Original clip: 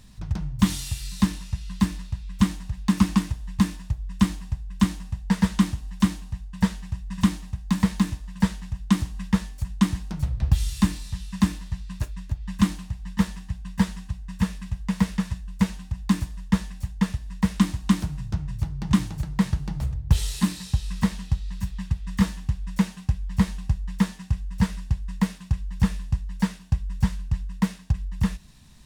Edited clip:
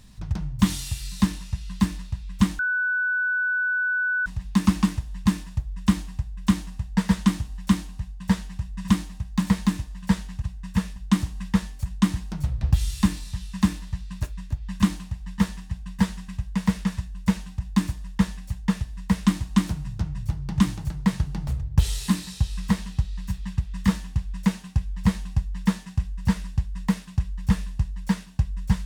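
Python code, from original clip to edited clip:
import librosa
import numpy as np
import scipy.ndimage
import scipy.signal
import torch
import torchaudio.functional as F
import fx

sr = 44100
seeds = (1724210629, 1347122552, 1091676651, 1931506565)

y = fx.edit(x, sr, fx.insert_tone(at_s=2.59, length_s=1.67, hz=1490.0, db=-21.0),
    fx.move(start_s=14.07, length_s=0.54, to_s=8.75), tone=tone)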